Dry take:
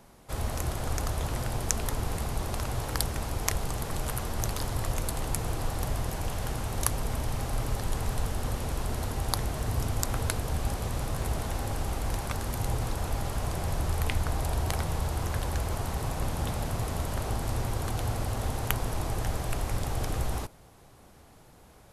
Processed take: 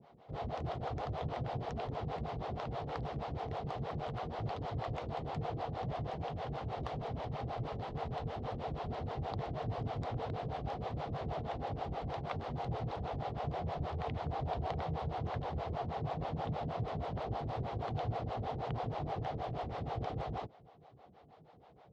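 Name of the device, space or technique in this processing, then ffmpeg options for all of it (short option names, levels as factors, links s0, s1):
guitar amplifier with harmonic tremolo: -filter_complex "[0:a]acrossover=split=400[s0][s1];[s0]aeval=exprs='val(0)*(1-1/2+1/2*cos(2*PI*6.3*n/s))':c=same[s2];[s1]aeval=exprs='val(0)*(1-1/2-1/2*cos(2*PI*6.3*n/s))':c=same[s3];[s2][s3]amix=inputs=2:normalize=0,asoftclip=type=tanh:threshold=0.0794,highpass=88,equalizer=f=150:t=q:w=4:g=6,equalizer=f=460:t=q:w=4:g=6,equalizer=f=720:t=q:w=4:g=9,equalizer=f=1600:t=q:w=4:g=-5,equalizer=f=2500:t=q:w=4:g=-4,lowpass=f=3700:w=0.5412,lowpass=f=3700:w=1.3066,volume=0.794"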